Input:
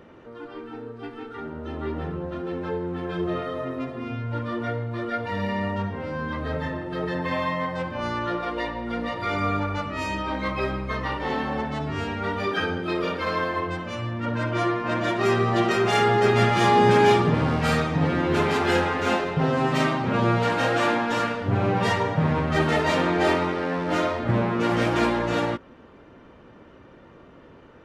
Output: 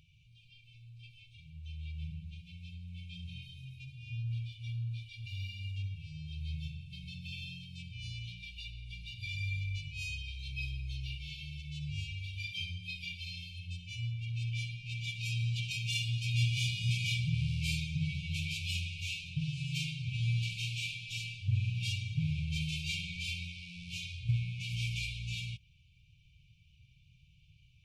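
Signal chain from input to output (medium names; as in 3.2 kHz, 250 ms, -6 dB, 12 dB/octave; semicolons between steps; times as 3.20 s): brick-wall FIR band-stop 160–2200 Hz; trim -5 dB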